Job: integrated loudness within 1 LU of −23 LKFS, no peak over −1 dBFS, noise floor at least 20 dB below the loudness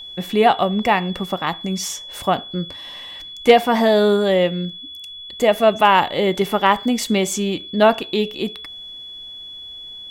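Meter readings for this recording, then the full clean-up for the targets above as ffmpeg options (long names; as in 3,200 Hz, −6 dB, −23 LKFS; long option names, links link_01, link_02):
interfering tone 3,400 Hz; level of the tone −33 dBFS; integrated loudness −18.5 LKFS; sample peak −2.0 dBFS; target loudness −23.0 LKFS
→ -af "bandreject=frequency=3400:width=30"
-af "volume=-4.5dB"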